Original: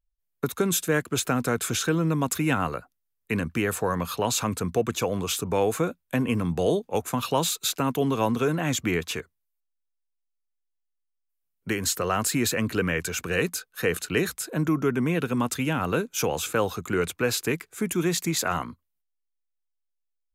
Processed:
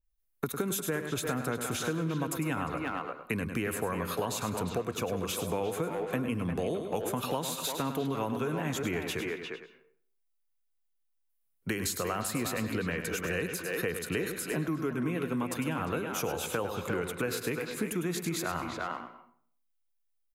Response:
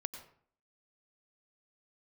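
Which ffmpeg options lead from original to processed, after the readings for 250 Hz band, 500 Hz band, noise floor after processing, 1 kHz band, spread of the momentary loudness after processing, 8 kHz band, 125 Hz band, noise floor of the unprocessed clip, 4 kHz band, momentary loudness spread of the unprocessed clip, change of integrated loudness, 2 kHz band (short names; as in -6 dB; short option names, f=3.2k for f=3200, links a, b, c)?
-6.5 dB, -6.5 dB, -75 dBFS, -6.0 dB, 3 LU, -8.0 dB, -7.0 dB, -79 dBFS, -8.0 dB, 5 LU, -7.0 dB, -6.0 dB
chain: -filter_complex "[0:a]asplit=2[a][b];[b]adelay=350,highpass=300,lowpass=3.4k,asoftclip=type=hard:threshold=-18dB,volume=-6dB[c];[a][c]amix=inputs=2:normalize=0,asplit=2[d][e];[1:a]atrim=start_sample=2205,adelay=102[f];[e][f]afir=irnorm=-1:irlink=0,volume=-8dB[g];[d][g]amix=inputs=2:normalize=0,aexciter=amount=1.9:drive=3.9:freq=9.7k,acompressor=threshold=-29dB:ratio=5,adynamicequalizer=threshold=0.00447:dfrequency=3100:dqfactor=0.7:tfrequency=3100:tqfactor=0.7:attack=5:release=100:ratio=0.375:range=2:mode=cutabove:tftype=highshelf"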